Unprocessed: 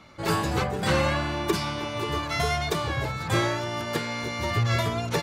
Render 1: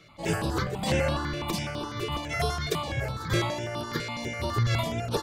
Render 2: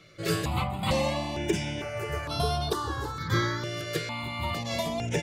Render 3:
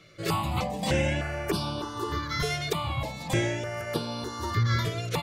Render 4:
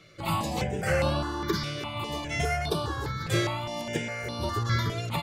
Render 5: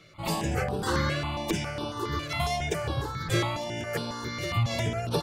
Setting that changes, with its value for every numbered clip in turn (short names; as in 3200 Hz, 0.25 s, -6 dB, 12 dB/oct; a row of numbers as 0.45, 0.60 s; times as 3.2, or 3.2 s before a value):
step phaser, rate: 12, 2.2, 3.3, 4.9, 7.3 Hz